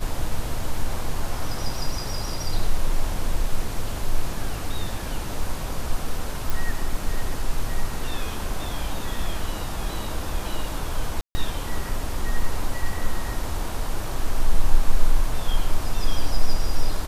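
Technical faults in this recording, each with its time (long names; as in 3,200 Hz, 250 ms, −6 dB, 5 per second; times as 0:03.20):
0:06.50: click
0:11.21–0:11.35: drop-out 140 ms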